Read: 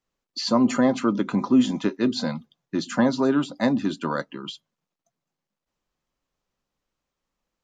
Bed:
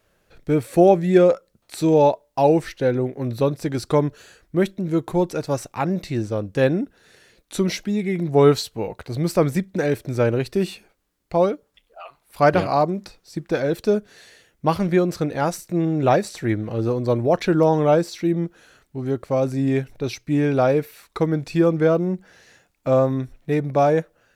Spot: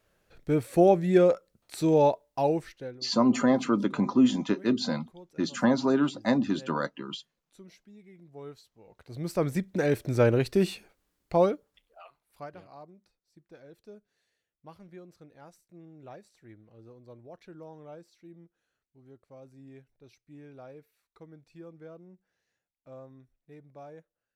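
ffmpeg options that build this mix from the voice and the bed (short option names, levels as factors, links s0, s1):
-filter_complex "[0:a]adelay=2650,volume=0.708[s0];[1:a]volume=11.2,afade=t=out:st=2.19:d=0.81:silence=0.0668344,afade=t=in:st=8.84:d=1.28:silence=0.0446684,afade=t=out:st=11.16:d=1.32:silence=0.0446684[s1];[s0][s1]amix=inputs=2:normalize=0"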